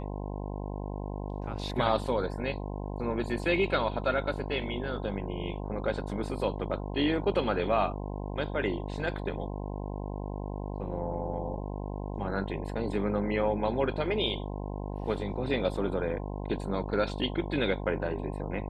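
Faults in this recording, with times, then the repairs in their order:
buzz 50 Hz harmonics 21 -36 dBFS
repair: de-hum 50 Hz, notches 21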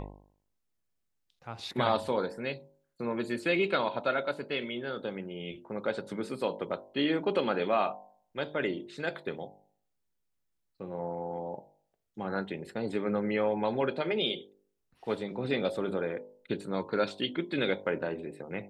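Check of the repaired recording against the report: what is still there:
none

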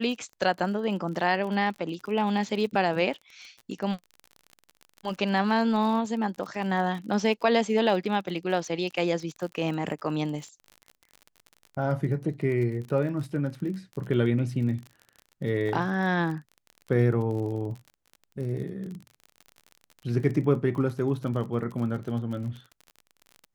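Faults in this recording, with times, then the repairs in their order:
crackle 39/s -35 dBFS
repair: de-click

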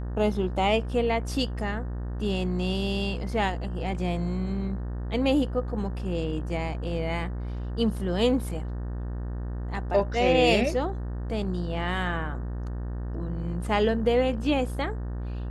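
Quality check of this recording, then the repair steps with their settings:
buzz 60 Hz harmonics 31 -32 dBFS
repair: de-hum 60 Hz, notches 31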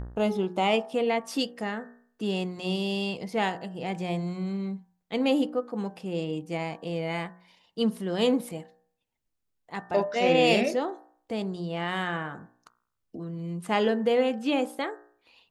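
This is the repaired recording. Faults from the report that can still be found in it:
none

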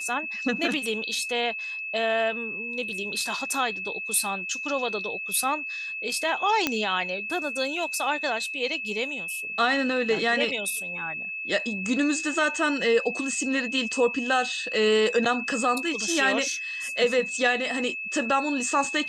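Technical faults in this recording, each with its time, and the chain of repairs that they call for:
tone 2600 Hz -31 dBFS
6.67 pop -7 dBFS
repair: de-click; notch 2600 Hz, Q 30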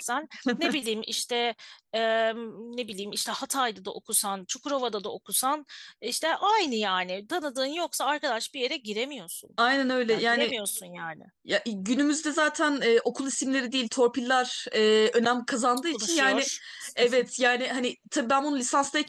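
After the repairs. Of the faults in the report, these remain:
none

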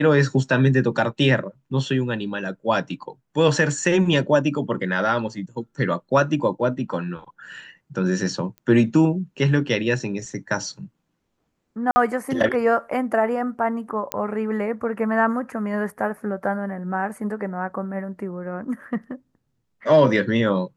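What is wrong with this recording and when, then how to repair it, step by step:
8.58 pop -27 dBFS
11.91–11.96 gap 50 ms
14.12 pop -7 dBFS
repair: de-click; interpolate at 11.91, 50 ms

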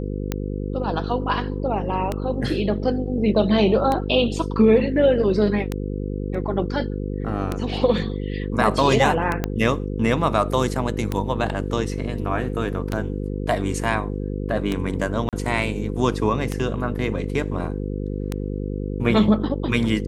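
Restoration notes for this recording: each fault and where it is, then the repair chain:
buzz 50 Hz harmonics 10 -27 dBFS
tick 33 1/3 rpm -10 dBFS
9.44 pop -9 dBFS
15.29–15.33 gap 37 ms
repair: de-click; de-hum 50 Hz, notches 10; interpolate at 15.29, 37 ms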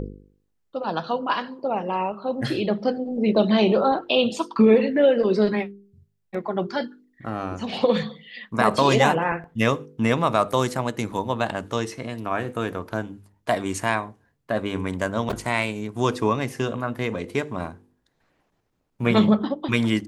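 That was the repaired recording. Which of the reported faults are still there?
9.44 pop

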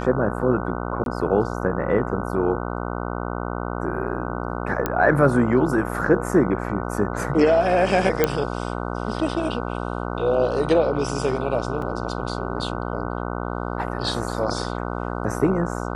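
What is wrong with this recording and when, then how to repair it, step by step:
buzz 60 Hz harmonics 25 -28 dBFS
1.04–1.06 gap 22 ms
4.86 pop -8 dBFS
8.24 pop -4 dBFS
11.82 gap 2.1 ms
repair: de-click; de-hum 60 Hz, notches 25; interpolate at 1.04, 22 ms; interpolate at 11.82, 2.1 ms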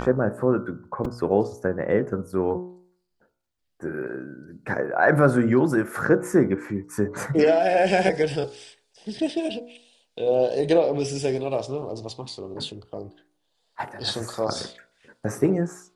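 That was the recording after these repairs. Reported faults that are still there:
none

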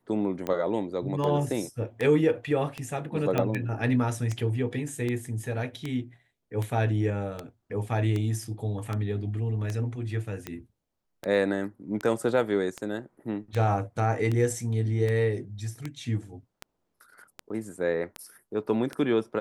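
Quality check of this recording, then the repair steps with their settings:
tick 78 rpm -18 dBFS
3.38 pop -13 dBFS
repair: de-click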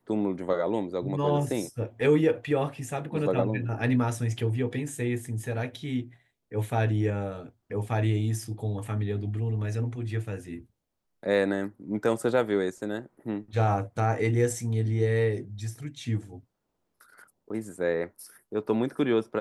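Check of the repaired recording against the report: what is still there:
none

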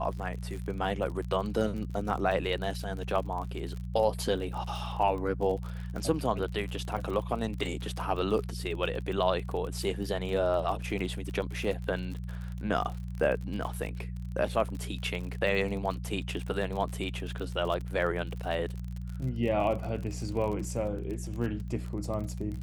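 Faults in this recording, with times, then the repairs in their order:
crackle 39/s -35 dBFS
hum 60 Hz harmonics 3 -37 dBFS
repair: de-click; de-hum 60 Hz, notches 3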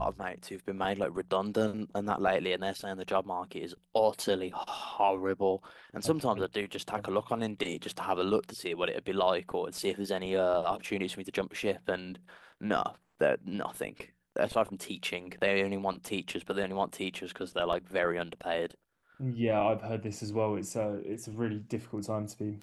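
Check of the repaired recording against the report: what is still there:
none

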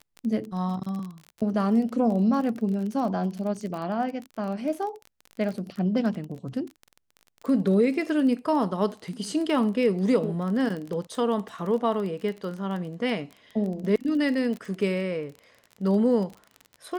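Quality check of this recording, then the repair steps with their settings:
crackle 25/s -32 dBFS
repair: de-click

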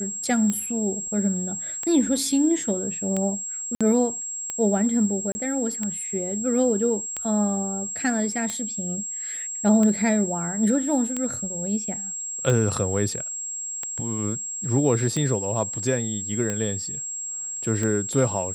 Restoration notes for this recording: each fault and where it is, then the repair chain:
tick 45 rpm -14 dBFS
tone 7600 Hz -29 dBFS
3.75–3.81 gap 56 ms
5.32–5.35 gap 30 ms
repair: de-click; notch 7600 Hz, Q 30; interpolate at 3.75, 56 ms; interpolate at 5.32, 30 ms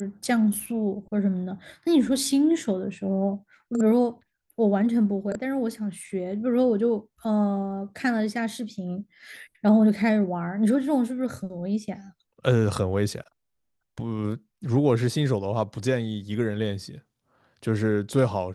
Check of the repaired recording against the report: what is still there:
none

